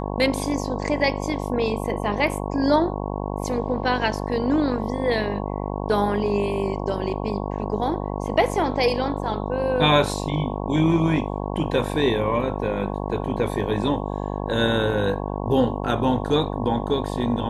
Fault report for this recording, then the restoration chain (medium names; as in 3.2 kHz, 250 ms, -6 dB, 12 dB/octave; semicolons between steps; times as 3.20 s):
buzz 50 Hz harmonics 22 -28 dBFS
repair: de-hum 50 Hz, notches 22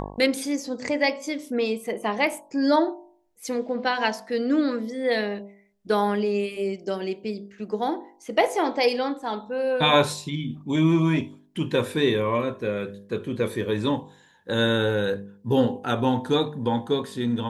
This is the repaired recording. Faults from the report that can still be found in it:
nothing left